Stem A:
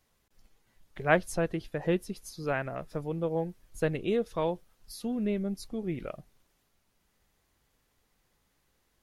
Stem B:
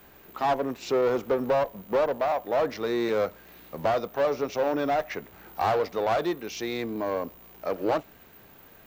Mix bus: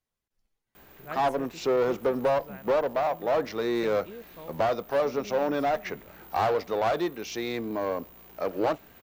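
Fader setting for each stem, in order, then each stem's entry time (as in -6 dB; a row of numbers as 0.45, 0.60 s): -15.5, -0.5 dB; 0.00, 0.75 s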